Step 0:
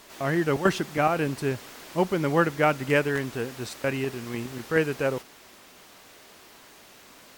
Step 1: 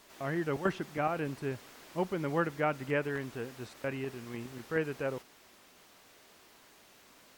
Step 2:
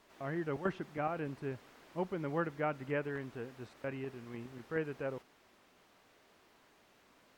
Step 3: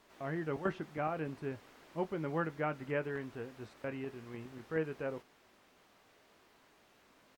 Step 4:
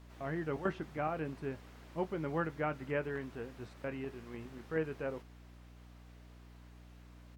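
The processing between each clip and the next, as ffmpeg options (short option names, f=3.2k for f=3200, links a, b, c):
-filter_complex "[0:a]acrossover=split=2800[a][b];[b]acompressor=threshold=-44dB:ratio=4:attack=1:release=60[c];[a][c]amix=inputs=2:normalize=0,volume=-8.5dB"
-af "highshelf=f=4.1k:g=-11,volume=-4dB"
-filter_complex "[0:a]asplit=2[a][b];[b]adelay=19,volume=-12dB[c];[a][c]amix=inputs=2:normalize=0"
-af "aeval=exprs='val(0)+0.002*(sin(2*PI*60*n/s)+sin(2*PI*2*60*n/s)/2+sin(2*PI*3*60*n/s)/3+sin(2*PI*4*60*n/s)/4+sin(2*PI*5*60*n/s)/5)':c=same"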